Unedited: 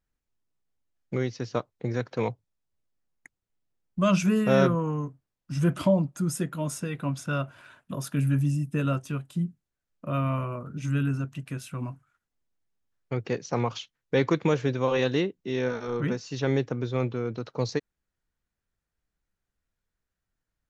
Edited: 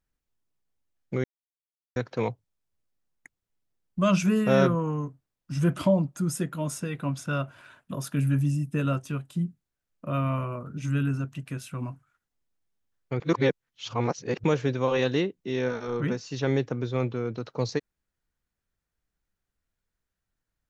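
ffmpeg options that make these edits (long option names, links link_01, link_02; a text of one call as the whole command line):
ffmpeg -i in.wav -filter_complex "[0:a]asplit=5[link_01][link_02][link_03][link_04][link_05];[link_01]atrim=end=1.24,asetpts=PTS-STARTPTS,afade=type=out:start_time=1.236:duration=0.004:curve=hsin[link_06];[link_02]atrim=start=1.24:end=1.96,asetpts=PTS-STARTPTS,volume=0[link_07];[link_03]atrim=start=1.96:end=13.202,asetpts=PTS-STARTPTS,afade=type=in:duration=0.004:curve=hsin[link_08];[link_04]atrim=start=13.198:end=14.442,asetpts=PTS-STARTPTS,areverse[link_09];[link_05]atrim=start=14.438[link_10];[link_06][link_07][link_08]concat=n=3:v=0:a=1[link_11];[link_11][link_09]acrossfade=duration=0.004:curve1=hsin:curve2=hsin[link_12];[link_12][link_10]acrossfade=duration=0.004:curve1=hsin:curve2=hsin" out.wav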